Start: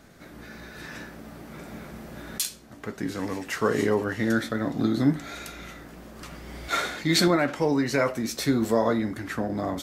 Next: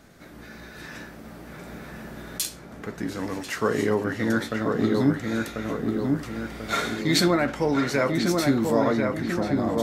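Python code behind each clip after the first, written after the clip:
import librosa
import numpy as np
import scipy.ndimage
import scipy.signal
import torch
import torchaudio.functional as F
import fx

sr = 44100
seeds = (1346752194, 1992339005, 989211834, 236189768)

y = fx.echo_filtered(x, sr, ms=1041, feedback_pct=54, hz=1900.0, wet_db=-3)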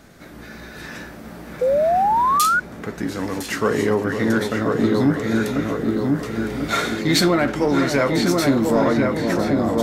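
y = fx.echo_alternate(x, sr, ms=504, hz=1000.0, feedback_pct=52, wet_db=-8)
y = 10.0 ** (-13.0 / 20.0) * np.tanh(y / 10.0 ** (-13.0 / 20.0))
y = fx.spec_paint(y, sr, seeds[0], shape='rise', start_s=1.61, length_s=0.99, low_hz=490.0, high_hz=1500.0, level_db=-22.0)
y = F.gain(torch.from_numpy(y), 5.0).numpy()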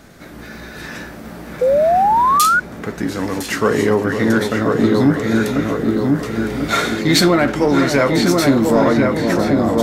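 y = fx.dmg_crackle(x, sr, seeds[1], per_s=22.0, level_db=-39.0)
y = F.gain(torch.from_numpy(y), 4.0).numpy()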